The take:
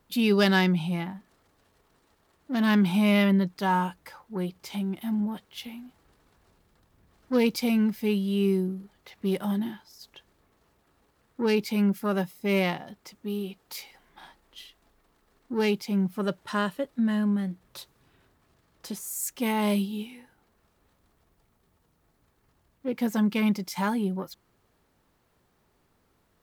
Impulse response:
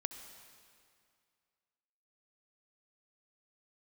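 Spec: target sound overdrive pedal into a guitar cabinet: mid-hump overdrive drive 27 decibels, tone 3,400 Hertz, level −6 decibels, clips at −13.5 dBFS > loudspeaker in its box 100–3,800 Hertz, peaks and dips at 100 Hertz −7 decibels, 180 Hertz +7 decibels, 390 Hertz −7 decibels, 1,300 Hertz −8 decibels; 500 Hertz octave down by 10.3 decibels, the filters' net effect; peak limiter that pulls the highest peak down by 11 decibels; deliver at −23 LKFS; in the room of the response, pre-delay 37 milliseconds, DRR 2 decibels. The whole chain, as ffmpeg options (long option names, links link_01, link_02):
-filter_complex "[0:a]equalizer=frequency=500:width_type=o:gain=-8.5,alimiter=limit=-19.5dB:level=0:latency=1,asplit=2[link_01][link_02];[1:a]atrim=start_sample=2205,adelay=37[link_03];[link_02][link_03]afir=irnorm=-1:irlink=0,volume=-1dB[link_04];[link_01][link_04]amix=inputs=2:normalize=0,asplit=2[link_05][link_06];[link_06]highpass=frequency=720:poles=1,volume=27dB,asoftclip=type=tanh:threshold=-13.5dB[link_07];[link_05][link_07]amix=inputs=2:normalize=0,lowpass=frequency=3400:poles=1,volume=-6dB,highpass=100,equalizer=frequency=100:width_type=q:width=4:gain=-7,equalizer=frequency=180:width_type=q:width=4:gain=7,equalizer=frequency=390:width_type=q:width=4:gain=-7,equalizer=frequency=1300:width_type=q:width=4:gain=-8,lowpass=frequency=3800:width=0.5412,lowpass=frequency=3800:width=1.3066,volume=-1dB"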